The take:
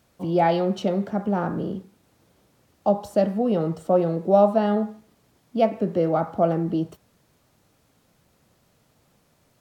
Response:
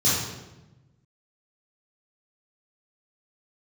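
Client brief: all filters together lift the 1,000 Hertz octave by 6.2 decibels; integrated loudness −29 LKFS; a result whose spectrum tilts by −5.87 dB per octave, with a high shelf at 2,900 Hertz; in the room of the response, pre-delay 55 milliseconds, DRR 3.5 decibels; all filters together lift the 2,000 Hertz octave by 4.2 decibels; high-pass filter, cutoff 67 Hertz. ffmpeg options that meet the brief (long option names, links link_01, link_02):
-filter_complex "[0:a]highpass=67,equalizer=frequency=1000:width_type=o:gain=9,equalizer=frequency=2000:width_type=o:gain=4.5,highshelf=frequency=2900:gain=-7.5,asplit=2[link_01][link_02];[1:a]atrim=start_sample=2205,adelay=55[link_03];[link_02][link_03]afir=irnorm=-1:irlink=0,volume=-18dB[link_04];[link_01][link_04]amix=inputs=2:normalize=0,volume=-11dB"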